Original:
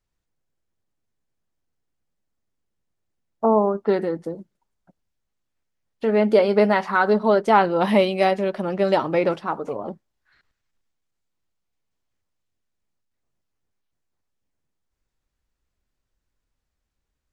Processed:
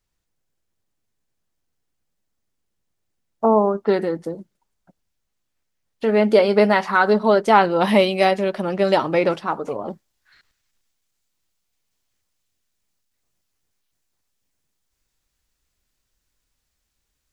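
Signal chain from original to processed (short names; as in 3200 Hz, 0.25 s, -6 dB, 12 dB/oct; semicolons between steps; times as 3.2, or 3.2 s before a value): high shelf 2300 Hz +5 dB, from 9.9 s +11.5 dB; gain +1.5 dB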